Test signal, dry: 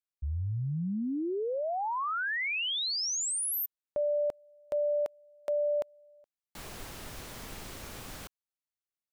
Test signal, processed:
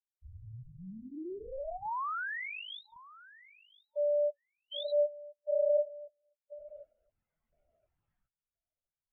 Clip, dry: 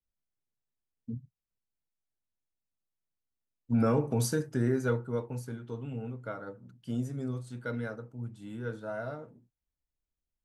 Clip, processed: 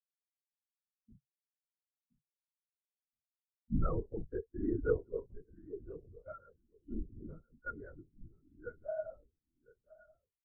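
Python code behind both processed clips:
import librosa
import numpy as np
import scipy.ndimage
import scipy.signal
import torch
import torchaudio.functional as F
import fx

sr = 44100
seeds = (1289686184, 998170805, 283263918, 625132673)

p1 = fx.low_shelf(x, sr, hz=490.0, db=-10.0)
p2 = fx.notch(p1, sr, hz=780.0, q=20.0)
p3 = fx.rider(p2, sr, range_db=3, speed_s=2.0)
p4 = p2 + (p3 * librosa.db_to_amplitude(0.0))
p5 = np.clip(p4, -10.0 ** (-21.5 / 20.0), 10.0 ** (-21.5 / 20.0))
p6 = fx.air_absorb(p5, sr, metres=170.0)
p7 = p6 + fx.echo_feedback(p6, sr, ms=1020, feedback_pct=30, wet_db=-7.5, dry=0)
p8 = fx.lpc_vocoder(p7, sr, seeds[0], excitation='whisper', order=10)
p9 = fx.spectral_expand(p8, sr, expansion=2.5)
y = p9 * librosa.db_to_amplitude(-3.5)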